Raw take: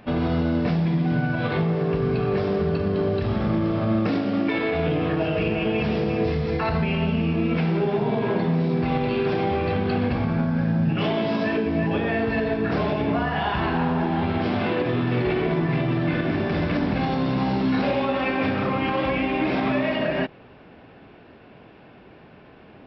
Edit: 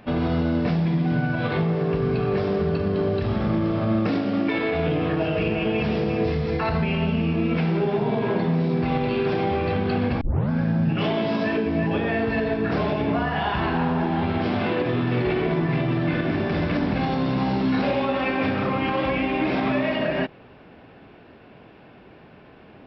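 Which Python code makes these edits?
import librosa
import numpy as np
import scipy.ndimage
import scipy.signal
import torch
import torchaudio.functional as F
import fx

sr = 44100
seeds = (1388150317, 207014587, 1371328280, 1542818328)

y = fx.edit(x, sr, fx.tape_start(start_s=10.21, length_s=0.29), tone=tone)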